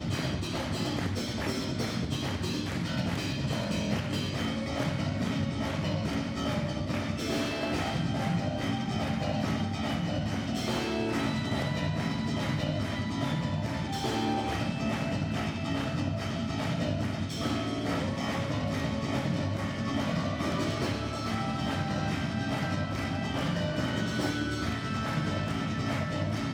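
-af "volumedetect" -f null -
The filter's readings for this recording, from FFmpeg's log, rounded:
mean_volume: -30.7 dB
max_volume: -15.3 dB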